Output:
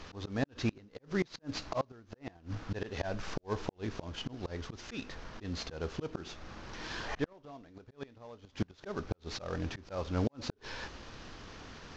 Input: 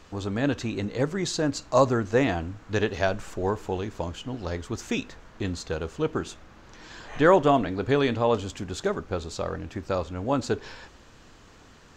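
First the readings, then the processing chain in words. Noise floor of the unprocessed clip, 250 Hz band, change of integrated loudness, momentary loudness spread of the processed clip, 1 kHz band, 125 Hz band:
−52 dBFS, −11.0 dB, −13.0 dB, 13 LU, −15.0 dB, −8.5 dB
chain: variable-slope delta modulation 32 kbit/s
volume swells 334 ms
gate with flip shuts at −23 dBFS, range −30 dB
level +3.5 dB

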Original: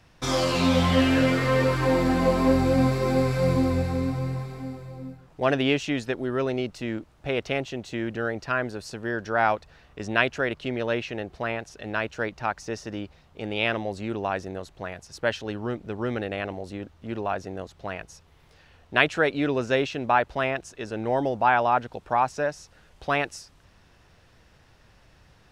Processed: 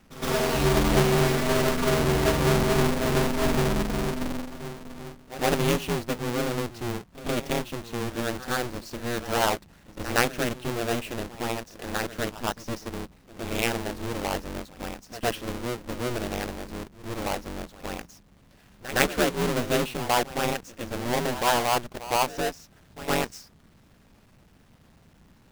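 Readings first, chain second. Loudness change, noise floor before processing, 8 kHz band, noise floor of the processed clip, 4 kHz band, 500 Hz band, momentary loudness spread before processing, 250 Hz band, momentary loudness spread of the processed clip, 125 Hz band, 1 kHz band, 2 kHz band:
−1.0 dB, −57 dBFS, +9.0 dB, −57 dBFS, +2.0 dB, −1.0 dB, 15 LU, −2.5 dB, 15 LU, −1.0 dB, −2.0 dB, −2.5 dB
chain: each half-wave held at its own peak
ring modulation 120 Hz
echo ahead of the sound 114 ms −15 dB
level −2.5 dB

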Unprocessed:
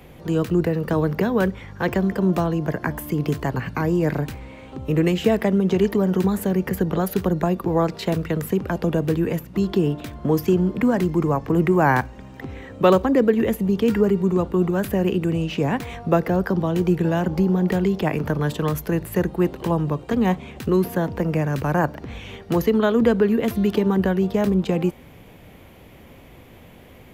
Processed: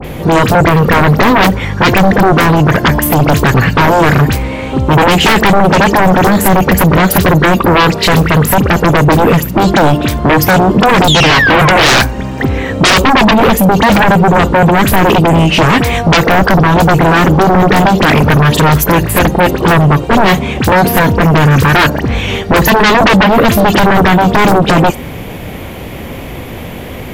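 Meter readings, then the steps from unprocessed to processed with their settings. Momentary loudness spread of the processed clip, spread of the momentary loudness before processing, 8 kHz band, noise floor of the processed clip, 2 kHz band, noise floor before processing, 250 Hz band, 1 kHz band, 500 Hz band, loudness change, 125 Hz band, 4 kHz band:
8 LU, 7 LU, +21.5 dB, −24 dBFS, +21.0 dB, −46 dBFS, +10.5 dB, +19.5 dB, +10.5 dB, +13.0 dB, +13.5 dB, +23.5 dB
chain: sound drawn into the spectrogram fall, 0:11.04–0:11.99, 530–3,800 Hz −29 dBFS
all-pass dispersion highs, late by 46 ms, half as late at 2,600 Hz
sine wavefolder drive 18 dB, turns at −3.5 dBFS

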